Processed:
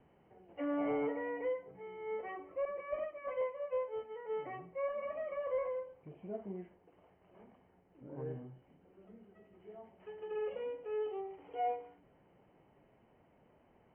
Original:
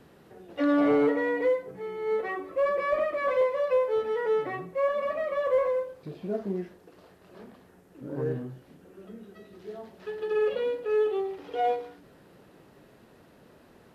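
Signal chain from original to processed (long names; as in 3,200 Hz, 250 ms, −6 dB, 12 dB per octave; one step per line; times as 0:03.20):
0:02.65–0:04.34: downward expander −23 dBFS
Chebyshev low-pass with heavy ripple 3,100 Hz, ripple 9 dB
low-shelf EQ 180 Hz +8.5 dB
level −7.5 dB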